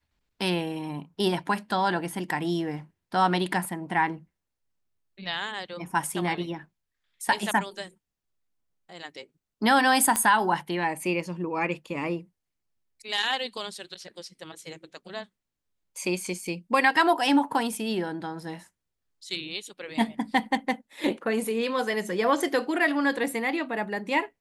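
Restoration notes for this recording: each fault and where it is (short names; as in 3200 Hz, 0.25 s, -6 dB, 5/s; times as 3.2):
10.16 pop -9 dBFS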